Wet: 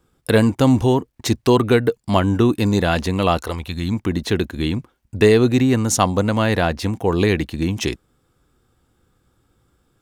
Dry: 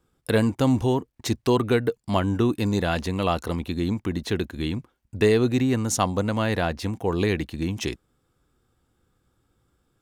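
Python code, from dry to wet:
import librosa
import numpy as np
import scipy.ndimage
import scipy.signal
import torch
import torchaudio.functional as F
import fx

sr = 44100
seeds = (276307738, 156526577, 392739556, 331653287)

y = fx.peak_eq(x, sr, hz=fx.line((3.37, 140.0), (3.92, 510.0)), db=-12.5, octaves=1.4, at=(3.37, 3.92), fade=0.02)
y = F.gain(torch.from_numpy(y), 6.0).numpy()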